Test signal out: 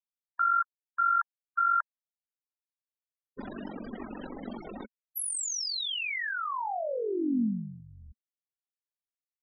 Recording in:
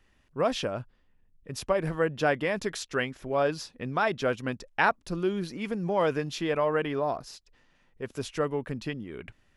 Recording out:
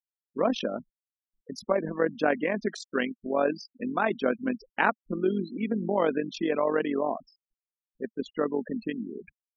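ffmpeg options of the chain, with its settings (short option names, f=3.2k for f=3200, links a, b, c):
-af "tremolo=f=46:d=0.667,afftfilt=real='re*gte(hypot(re,im),0.0178)':imag='im*gte(hypot(re,im),0.0178)':win_size=1024:overlap=0.75,lowshelf=f=160:t=q:w=3:g=-12,volume=2dB"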